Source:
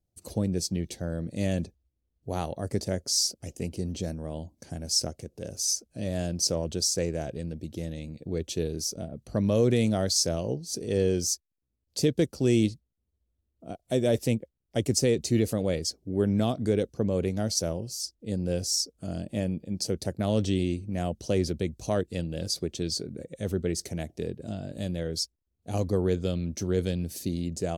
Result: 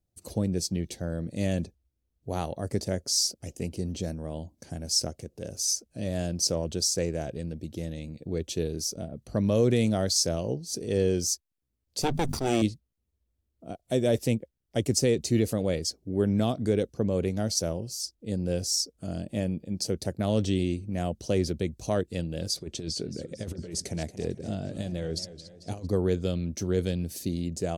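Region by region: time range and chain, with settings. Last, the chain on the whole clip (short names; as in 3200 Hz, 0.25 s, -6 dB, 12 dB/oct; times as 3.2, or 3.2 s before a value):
12.02–12.62 minimum comb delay 0.84 ms + notches 50/100/150/200/250 Hz + sustainer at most 60 dB/s
22.57–25.87 LPF 11000 Hz 24 dB/oct + negative-ratio compressor -32 dBFS, ratio -0.5 + warbling echo 0.224 s, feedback 53%, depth 171 cents, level -14 dB
whole clip: dry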